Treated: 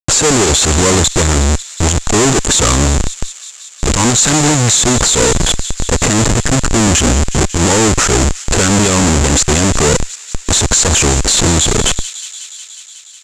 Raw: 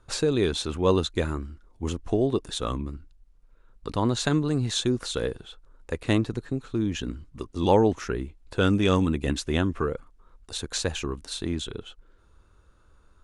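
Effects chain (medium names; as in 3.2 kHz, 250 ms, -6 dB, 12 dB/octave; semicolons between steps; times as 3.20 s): 2.06–4.84 s: treble shelf 2.4 kHz +7.5 dB; compression 1.5:1, threshold -37 dBFS, peak gain reduction 8.5 dB; valve stage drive 30 dB, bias 0.25; Schmitt trigger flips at -46.5 dBFS; resonant low-pass 7.3 kHz, resonance Q 8.1; feedback echo behind a high-pass 182 ms, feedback 78%, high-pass 2.5 kHz, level -17.5 dB; loudness maximiser +28.5 dB; trim -1 dB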